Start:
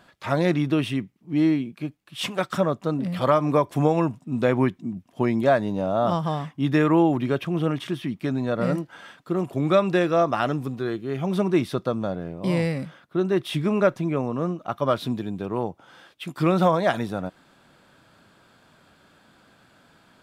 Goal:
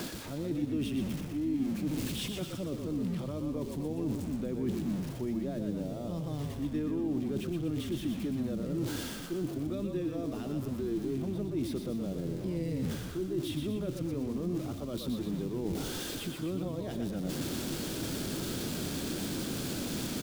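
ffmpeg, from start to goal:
ffmpeg -i in.wav -filter_complex "[0:a]aeval=exprs='val(0)+0.5*0.0422*sgn(val(0))':channel_layout=same,equalizer=frequency=340:width_type=o:width=1.4:gain=8.5,areverse,acompressor=threshold=-32dB:ratio=6,areverse,asplit=8[link_01][link_02][link_03][link_04][link_05][link_06][link_07][link_08];[link_02]adelay=121,afreqshift=-40,volume=-6dB[link_09];[link_03]adelay=242,afreqshift=-80,volume=-11.4dB[link_10];[link_04]adelay=363,afreqshift=-120,volume=-16.7dB[link_11];[link_05]adelay=484,afreqshift=-160,volume=-22.1dB[link_12];[link_06]adelay=605,afreqshift=-200,volume=-27.4dB[link_13];[link_07]adelay=726,afreqshift=-240,volume=-32.8dB[link_14];[link_08]adelay=847,afreqshift=-280,volume=-38.1dB[link_15];[link_01][link_09][link_10][link_11][link_12][link_13][link_14][link_15]amix=inputs=8:normalize=0,acrossover=split=430|3000[link_16][link_17][link_18];[link_17]acompressor=threshold=-49dB:ratio=6[link_19];[link_16][link_19][link_18]amix=inputs=3:normalize=0" out.wav

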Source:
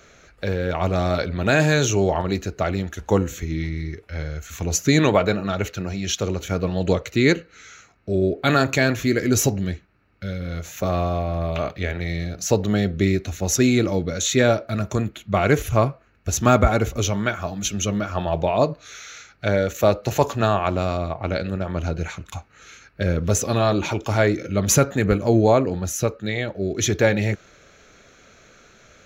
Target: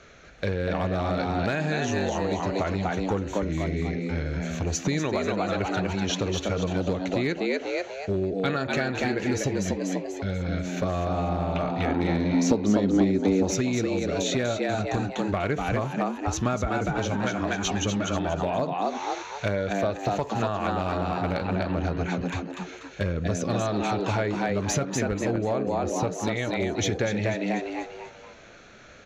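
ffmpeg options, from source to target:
ffmpeg -i in.wav -filter_complex "[0:a]lowpass=5100,asplit=6[link_01][link_02][link_03][link_04][link_05][link_06];[link_02]adelay=244,afreqshift=93,volume=-3.5dB[link_07];[link_03]adelay=488,afreqshift=186,volume=-11.9dB[link_08];[link_04]adelay=732,afreqshift=279,volume=-20.3dB[link_09];[link_05]adelay=976,afreqshift=372,volume=-28.7dB[link_10];[link_06]adelay=1220,afreqshift=465,volume=-37.1dB[link_11];[link_01][link_07][link_08][link_09][link_10][link_11]amix=inputs=6:normalize=0,acompressor=threshold=-22dB:ratio=12,aeval=exprs='clip(val(0),-1,0.126)':channel_layout=same,asettb=1/sr,asplit=3[link_12][link_13][link_14];[link_12]atrim=end=11.854[link_15];[link_13]atrim=start=11.85:end=13.51,asetpts=PTS-STARTPTS,afade=type=in:duration=0.004:curve=qsin,afade=type=out:start_time=1.656:duration=0.004:curve=qsin,equalizer=frequency=125:width_type=o:width=1:gain=-8,equalizer=frequency=250:width_type=o:width=1:gain=12,equalizer=frequency=1000:width_type=o:width=1:gain=4,equalizer=frequency=2000:width_type=o:width=1:gain=-4[link_16];[link_14]atrim=start=13.506[link_17];[link_15][link_16]acrossfade=duration=0.004:curve1=hsin:curve2=qsin[link_18];[link_18][link_17]acrossfade=duration=0.004:curve1=qsin:curve2=hsin" out.wav

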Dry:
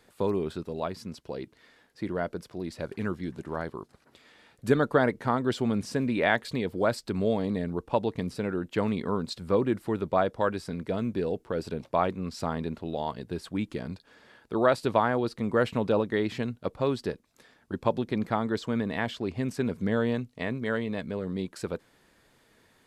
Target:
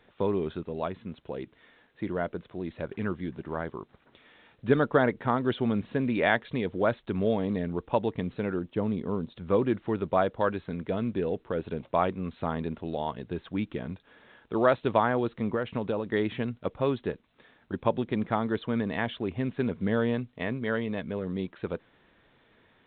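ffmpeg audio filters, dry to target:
ffmpeg -i in.wav -filter_complex "[0:a]asettb=1/sr,asplit=3[link_01][link_02][link_03];[link_01]atrim=end=8.594[link_04];[link_02]atrim=start=8.59:end=9.36,asetpts=PTS-STARTPTS,afade=type=in:duration=0.004:curve=qsin,afade=type=out:start_time=0.766:duration=0.004:curve=qsin,equalizer=frequency=2100:width=0.53:gain=-11.5[link_05];[link_03]atrim=start=9.356[link_06];[link_04][link_05]acrossfade=duration=0.004:curve1=hsin:curve2=qsin[link_07];[link_07][link_06]acrossfade=duration=0.004:curve1=qsin:curve2=hsin,asettb=1/sr,asplit=3[link_08][link_09][link_10];[link_08]atrim=end=15.524[link_11];[link_09]atrim=start=15.52:end=16.06,asetpts=PTS-STARTPTS,afade=type=in:duration=0.004:curve=qsin,afade=type=out:start_time=0.536:duration=0.004:curve=qsin,acompressor=threshold=-26dB:ratio=6[link_12];[link_10]atrim=start=16.056[link_13];[link_11][link_12]acrossfade=duration=0.004:curve1=hsin:curve2=qsin[link_14];[link_14][link_13]acrossfade=duration=0.004:curve1=qsin:curve2=hsin" -ar 8000 -c:a pcm_alaw out.wav

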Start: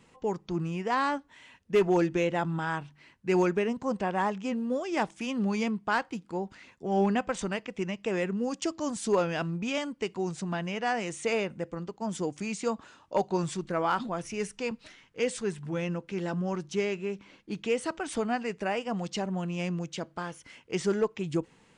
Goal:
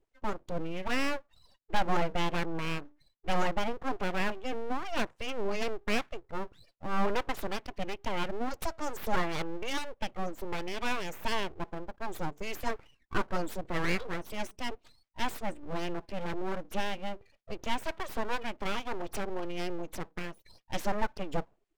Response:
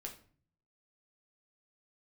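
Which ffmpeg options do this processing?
-af "afftdn=noise_reduction=27:noise_floor=-46,aeval=exprs='abs(val(0))':channel_layout=same"

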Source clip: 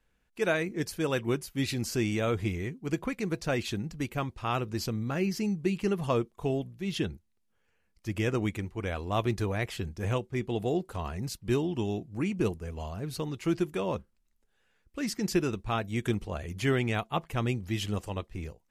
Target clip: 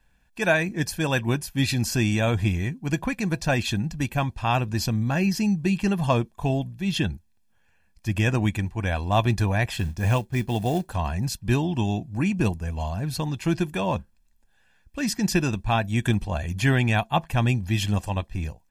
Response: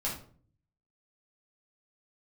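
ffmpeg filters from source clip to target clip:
-filter_complex "[0:a]asettb=1/sr,asplit=3[link_01][link_02][link_03];[link_01]atrim=end=9.764[link_04];[link_02]atrim=start=9.76:end=10.93,asetpts=PTS-STARTPTS,afade=type=in:duration=0.004:curve=qsin,afade=type=out:start_time=1.166:duration=0.004:curve=qsin,acrusher=bits=6:mode=log:mix=0:aa=0.000001[link_05];[link_03]atrim=start=10.926[link_06];[link_04][link_05]acrossfade=duration=0.004:curve1=hsin:curve2=qsin[link_07];[link_07][link_06]acrossfade=duration=0.004:curve1=qsin:curve2=hsin,aecho=1:1:1.2:0.61,volume=6dB"

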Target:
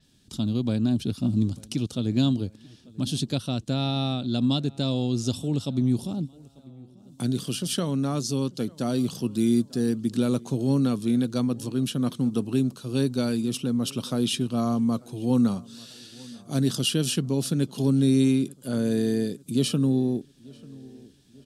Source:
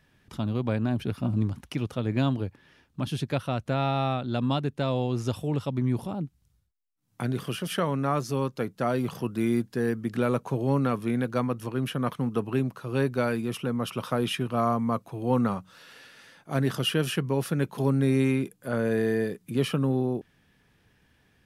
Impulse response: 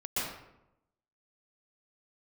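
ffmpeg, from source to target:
-filter_complex "[0:a]equalizer=frequency=250:width_type=o:width=1:gain=6,equalizer=frequency=500:width_type=o:width=1:gain=-3,equalizer=frequency=1000:width_type=o:width=1:gain=-7,equalizer=frequency=2000:width_type=o:width=1:gain=-11,equalizer=frequency=4000:width_type=o:width=1:gain=10,equalizer=frequency=8000:width_type=o:width=1:gain=12,asplit=2[link_01][link_02];[link_02]adelay=892,lowpass=frequency=2600:poles=1,volume=-23dB,asplit=2[link_03][link_04];[link_04]adelay=892,lowpass=frequency=2600:poles=1,volume=0.53,asplit=2[link_05][link_06];[link_06]adelay=892,lowpass=frequency=2600:poles=1,volume=0.53,asplit=2[link_07][link_08];[link_08]adelay=892,lowpass=frequency=2600:poles=1,volume=0.53[link_09];[link_01][link_03][link_05][link_07][link_09]amix=inputs=5:normalize=0,adynamicequalizer=threshold=0.00447:dfrequency=7100:dqfactor=0.7:tfrequency=7100:tqfactor=0.7:attack=5:release=100:ratio=0.375:range=2:mode=cutabove:tftype=highshelf"

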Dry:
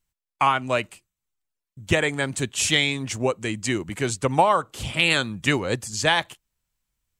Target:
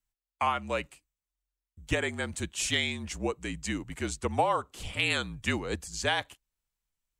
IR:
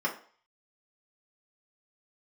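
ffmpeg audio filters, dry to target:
-af "afreqshift=-46,volume=-8dB"

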